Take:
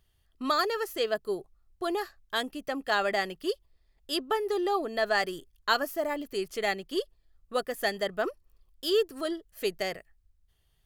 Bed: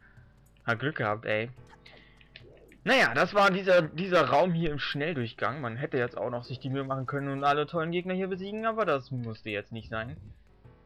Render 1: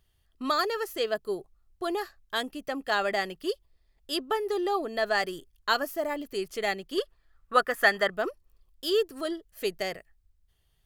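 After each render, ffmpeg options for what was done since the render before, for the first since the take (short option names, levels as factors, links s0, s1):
-filter_complex "[0:a]asettb=1/sr,asplit=3[s0][s1][s2];[s0]atrim=end=6.984[s3];[s1]atrim=start=6.98:end=8.1,asetpts=PTS-STARTPTS,afade=t=in:d=0.004:c=qsin,afade=t=out:st=1.116:d=0.004:c=qsin,equalizer=f=1400:t=o:w=1.4:g=14[s4];[s2]atrim=start=8.096[s5];[s3][s4]acrossfade=d=0.004:c1=hsin:c2=qsin[s6];[s6][s5]acrossfade=d=0.004:c1=qsin:c2=hsin"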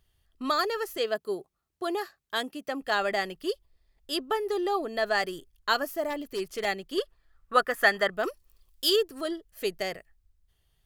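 -filter_complex "[0:a]asettb=1/sr,asplit=3[s0][s1][s2];[s0]atrim=end=0.974[s3];[s1]atrim=start=0.97:end=2.82,asetpts=PTS-STARTPTS,afade=t=in:d=0.004:c=qsin,afade=t=out:st=1.846:d=0.004:c=qsin,highpass=140[s4];[s2]atrim=start=2.816[s5];[s3][s4]acrossfade=d=0.004:c1=hsin:c2=qsin[s6];[s6][s5]acrossfade=d=0.004:c1=qsin:c2=hsin,asettb=1/sr,asplit=3[s7][s8][s9];[s7]atrim=end=6.104[s10];[s8]atrim=start=6.1:end=6.65,asetpts=PTS-STARTPTS,afade=t=in:d=0.004:c=qsin,afade=t=out:st=0.546:d=0.004:c=qsin,aeval=exprs='0.0562*(abs(mod(val(0)/0.0562+3,4)-2)-1)':c=same[s11];[s9]atrim=start=6.646[s12];[s10][s11]acrossfade=d=0.004:c1=hsin:c2=qsin[s13];[s13][s12]acrossfade=d=0.004:c1=qsin:c2=hsin,asettb=1/sr,asplit=3[s14][s15][s16];[s14]atrim=end=8.234[s17];[s15]atrim=start=8.23:end=8.96,asetpts=PTS-STARTPTS,afade=t=in:d=0.004:c=qsin,afade=t=out:st=0.726:d=0.004:c=qsin,highshelf=f=2000:g=10[s18];[s16]atrim=start=8.956[s19];[s17][s18]acrossfade=d=0.004:c1=hsin:c2=qsin[s20];[s20][s19]acrossfade=d=0.004:c1=qsin:c2=hsin"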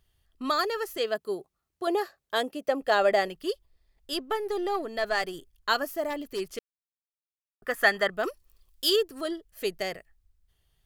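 -filter_complex "[0:a]asettb=1/sr,asplit=3[s0][s1][s2];[s0]atrim=end=1.874[s3];[s1]atrim=start=1.87:end=3.28,asetpts=PTS-STARTPTS,afade=t=in:d=0.004:c=qsin,afade=t=out:st=1.406:d=0.004:c=qsin,equalizer=f=550:w=1.5:g=9[s4];[s2]atrim=start=3.276[s5];[s3][s4]acrossfade=d=0.004:c1=hsin:c2=qsin[s6];[s6][s5]acrossfade=d=0.004:c1=qsin:c2=hsin,asettb=1/sr,asplit=3[s7][s8][s9];[s7]atrim=end=4.134[s10];[s8]atrim=start=4.13:end=5.34,asetpts=PTS-STARTPTS,afade=t=in:d=0.004:c=qsin,afade=t=out:st=1.206:d=0.004:c=qsin,aeval=exprs='if(lt(val(0),0),0.708*val(0),val(0))':c=same[s11];[s9]atrim=start=5.336[s12];[s10][s11]acrossfade=d=0.004:c1=hsin:c2=qsin[s13];[s13][s12]acrossfade=d=0.004:c1=qsin:c2=hsin,asplit=3[s14][s15][s16];[s14]atrim=end=6.59,asetpts=PTS-STARTPTS,afade=t=out:st=6.586:d=0.004:c=hsin[s17];[s15]atrim=start=6.59:end=7.62,asetpts=PTS-STARTPTS,volume=0[s18];[s16]atrim=start=7.62,asetpts=PTS-STARTPTS,afade=t=in:d=0.004:c=hsin[s19];[s17][s18][s19]concat=n=3:v=0:a=1"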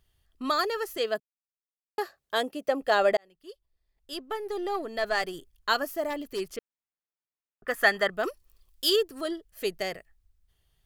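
-filter_complex "[0:a]asettb=1/sr,asplit=3[s0][s1][s2];[s0]atrim=end=6.564[s3];[s1]atrim=start=6.56:end=7.68,asetpts=PTS-STARTPTS,afade=t=in:d=0.004:c=qsin,afade=t=out:st=1.116:d=0.004:c=qsin,lowpass=2500[s4];[s2]atrim=start=7.676[s5];[s3][s4]acrossfade=d=0.004:c1=hsin:c2=qsin[s6];[s6][s5]acrossfade=d=0.004:c1=qsin:c2=hsin,asplit=4[s7][s8][s9][s10];[s7]atrim=end=1.2,asetpts=PTS-STARTPTS,afade=t=out:st=1.196:d=0.004:c=hsin[s11];[s8]atrim=start=1.2:end=1.98,asetpts=PTS-STARTPTS,volume=0[s12];[s9]atrim=start=1.98:end=3.17,asetpts=PTS-STARTPTS,afade=t=in:d=0.004:c=hsin,afade=t=out:st=1.186:d=0.004:c=hsin[s13];[s10]atrim=start=3.17,asetpts=PTS-STARTPTS,afade=t=in:d=1.87[s14];[s11][s12][s13][s14]concat=n=4:v=0:a=1"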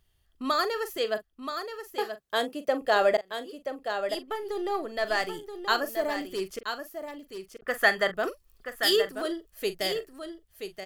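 -filter_complex "[0:a]asplit=2[s0][s1];[s1]adelay=42,volume=0.224[s2];[s0][s2]amix=inputs=2:normalize=0,aecho=1:1:978:0.398"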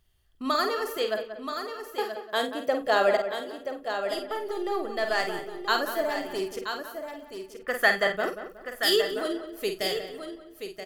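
-filter_complex "[0:a]asplit=2[s0][s1];[s1]adelay=50,volume=0.422[s2];[s0][s2]amix=inputs=2:normalize=0,asplit=2[s3][s4];[s4]adelay=183,lowpass=f=2300:p=1,volume=0.316,asplit=2[s5][s6];[s6]adelay=183,lowpass=f=2300:p=1,volume=0.36,asplit=2[s7][s8];[s8]adelay=183,lowpass=f=2300:p=1,volume=0.36,asplit=2[s9][s10];[s10]adelay=183,lowpass=f=2300:p=1,volume=0.36[s11];[s3][s5][s7][s9][s11]amix=inputs=5:normalize=0"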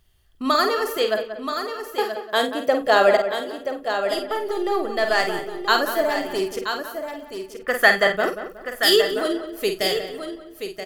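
-af "volume=2.11"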